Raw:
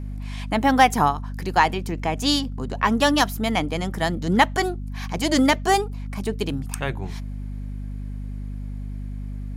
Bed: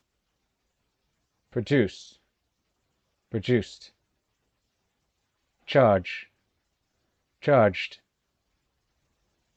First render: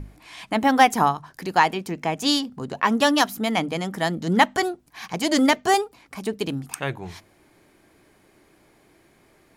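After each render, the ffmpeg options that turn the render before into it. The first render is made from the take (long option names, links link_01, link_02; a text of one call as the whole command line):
ffmpeg -i in.wav -af "bandreject=frequency=50:width_type=h:width=6,bandreject=frequency=100:width_type=h:width=6,bandreject=frequency=150:width_type=h:width=6,bandreject=frequency=200:width_type=h:width=6,bandreject=frequency=250:width_type=h:width=6" out.wav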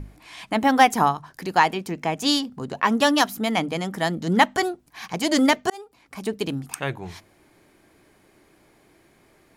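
ffmpeg -i in.wav -filter_complex "[0:a]asplit=2[link_01][link_02];[link_01]atrim=end=5.7,asetpts=PTS-STARTPTS,afade=type=out:start_time=5.696:duration=0.004:curve=hsin[link_03];[link_02]atrim=start=5.7,asetpts=PTS-STARTPTS,afade=type=in:duration=0.54[link_04];[link_03][link_04]concat=n=2:v=0:a=1" out.wav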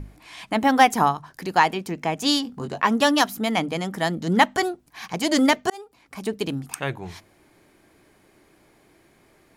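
ffmpeg -i in.wav -filter_complex "[0:a]asettb=1/sr,asplit=3[link_01][link_02][link_03];[link_01]atrim=end=2.434[link_04];[link_02]atrim=start=2.43:end=2.86,asetpts=PTS-STARTPTS,afade=type=in:duration=0.004:curve=qsin,afade=type=out:start_time=0.426:duration=0.004:curve=qsin,asplit=2[link_05][link_06];[link_06]adelay=21,volume=-5dB[link_07];[link_05][link_07]amix=inputs=2:normalize=0,atrim=end_sample=18963[link_08];[link_03]atrim=start=2.856[link_09];[link_04][link_08]acrossfade=duration=0.004:curve1=hsin:curve2=qsin[link_10];[link_10][link_09]acrossfade=duration=0.004:curve1=qsin:curve2=hsin" out.wav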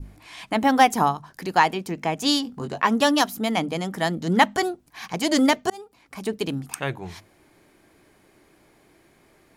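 ffmpeg -i in.wav -af "bandreject=frequency=103.2:width_type=h:width=4,bandreject=frequency=206.4:width_type=h:width=4,adynamicequalizer=threshold=0.02:dfrequency=1800:dqfactor=0.97:tfrequency=1800:tqfactor=0.97:attack=5:release=100:ratio=0.375:range=2.5:mode=cutabove:tftype=bell" out.wav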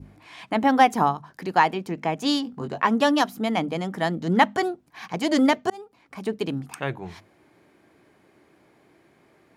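ffmpeg -i in.wav -af "highpass=95,highshelf=frequency=4500:gain=-11" out.wav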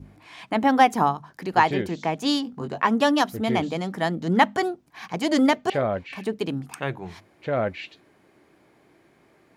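ffmpeg -i in.wav -i bed.wav -filter_complex "[1:a]volume=-5.5dB[link_01];[0:a][link_01]amix=inputs=2:normalize=0" out.wav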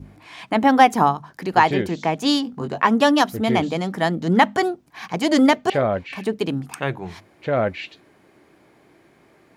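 ffmpeg -i in.wav -af "volume=4dB,alimiter=limit=-2dB:level=0:latency=1" out.wav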